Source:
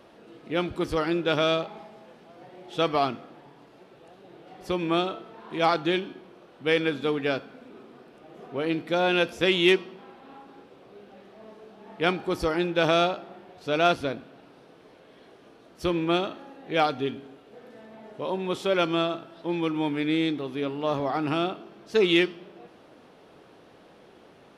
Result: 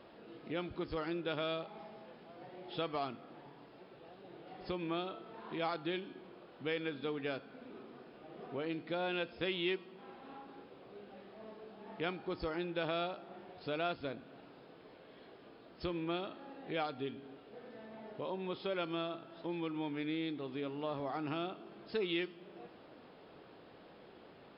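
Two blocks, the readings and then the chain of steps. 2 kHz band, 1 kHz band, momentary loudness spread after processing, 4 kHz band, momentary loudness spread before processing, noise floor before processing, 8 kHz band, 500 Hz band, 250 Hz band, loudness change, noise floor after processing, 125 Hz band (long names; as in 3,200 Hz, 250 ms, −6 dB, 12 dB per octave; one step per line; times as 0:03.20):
−14.0 dB, −13.5 dB, 20 LU, −13.5 dB, 15 LU, −54 dBFS, below −30 dB, −13.0 dB, −12.5 dB, −13.5 dB, −58 dBFS, −12.0 dB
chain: downward compressor 2 to 1, threshold −38 dBFS, peak gain reduction 12 dB
linear-phase brick-wall low-pass 5,300 Hz
level −4 dB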